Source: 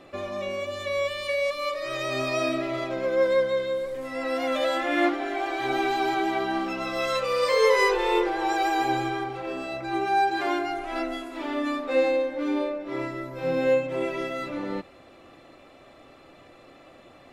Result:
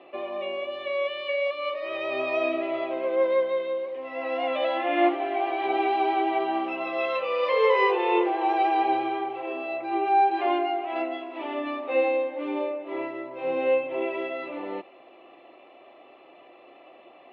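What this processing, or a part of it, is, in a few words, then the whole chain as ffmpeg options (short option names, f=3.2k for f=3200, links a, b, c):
phone earpiece: -af "highpass=360,equalizer=f=360:t=q:w=4:g=7,equalizer=f=710:t=q:w=4:g=7,equalizer=f=1k:t=q:w=4:g=4,equalizer=f=1.5k:t=q:w=4:g=-9,equalizer=f=2.8k:t=q:w=4:g=7,lowpass=f=3.1k:w=0.5412,lowpass=f=3.1k:w=1.3066,volume=-2dB"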